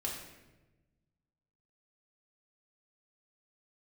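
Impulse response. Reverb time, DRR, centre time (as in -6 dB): 1.1 s, -2.5 dB, 46 ms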